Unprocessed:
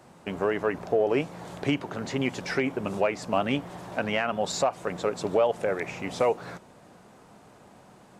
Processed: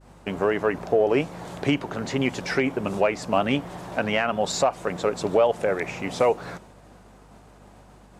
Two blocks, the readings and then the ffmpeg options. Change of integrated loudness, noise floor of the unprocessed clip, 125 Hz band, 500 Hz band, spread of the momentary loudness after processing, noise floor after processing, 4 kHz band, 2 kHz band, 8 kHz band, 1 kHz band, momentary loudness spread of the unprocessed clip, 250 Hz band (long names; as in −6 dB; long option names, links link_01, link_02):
+3.5 dB, −54 dBFS, +3.5 dB, +3.5 dB, 9 LU, −51 dBFS, +3.5 dB, +3.5 dB, +3.5 dB, +3.5 dB, 9 LU, +3.5 dB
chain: -af "agate=range=-33dB:threshold=-49dB:ratio=3:detection=peak,aeval=exprs='val(0)+0.00158*(sin(2*PI*50*n/s)+sin(2*PI*2*50*n/s)/2+sin(2*PI*3*50*n/s)/3+sin(2*PI*4*50*n/s)/4+sin(2*PI*5*50*n/s)/5)':channel_layout=same,volume=3.5dB"